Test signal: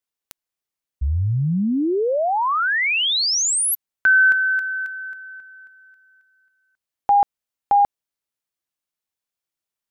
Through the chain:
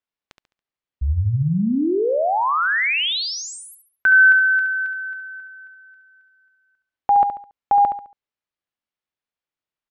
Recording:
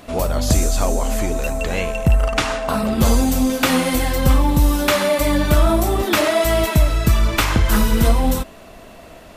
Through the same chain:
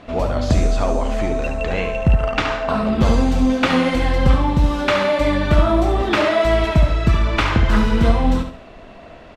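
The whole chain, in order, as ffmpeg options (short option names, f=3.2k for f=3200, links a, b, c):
-af "lowpass=3.5k,aecho=1:1:70|140|210|280:0.398|0.135|0.046|0.0156"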